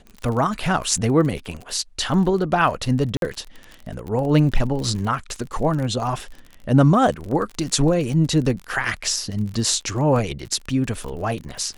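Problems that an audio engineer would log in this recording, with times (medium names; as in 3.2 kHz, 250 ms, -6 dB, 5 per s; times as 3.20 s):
crackle 35 per s -28 dBFS
3.17–3.22 s: dropout 52 ms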